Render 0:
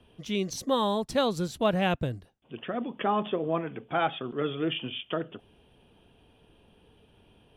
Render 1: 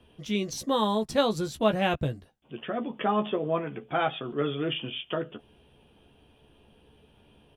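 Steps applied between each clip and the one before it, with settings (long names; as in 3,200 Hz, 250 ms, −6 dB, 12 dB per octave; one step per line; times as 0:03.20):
double-tracking delay 14 ms −6.5 dB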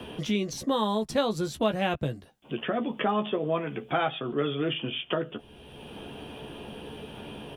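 multiband upward and downward compressor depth 70%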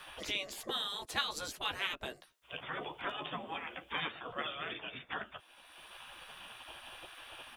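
gate on every frequency bin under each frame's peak −15 dB weak
level +1 dB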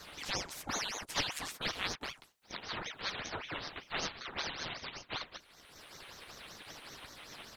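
ring modulator whose carrier an LFO sweeps 1,600 Hz, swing 85%, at 5.2 Hz
level +3 dB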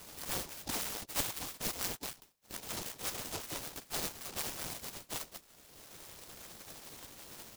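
short delay modulated by noise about 4,900 Hz, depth 0.19 ms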